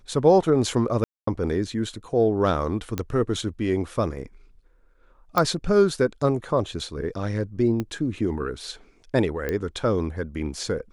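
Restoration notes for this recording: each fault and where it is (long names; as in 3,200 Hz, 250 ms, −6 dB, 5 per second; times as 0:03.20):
0:01.04–0:01.27: drop-out 234 ms
0:02.98: click −12 dBFS
0:05.38: click −8 dBFS
0:07.80: click −15 dBFS
0:09.49: click −14 dBFS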